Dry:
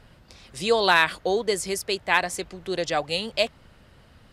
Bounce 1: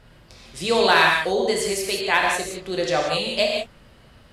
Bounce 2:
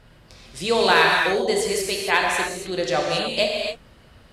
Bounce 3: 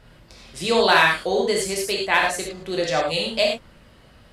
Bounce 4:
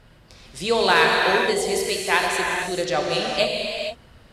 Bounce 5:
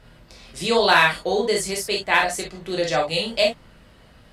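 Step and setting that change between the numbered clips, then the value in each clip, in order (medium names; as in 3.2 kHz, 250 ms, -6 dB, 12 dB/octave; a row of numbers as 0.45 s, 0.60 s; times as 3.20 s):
gated-style reverb, gate: 210 ms, 310 ms, 130 ms, 500 ms, 80 ms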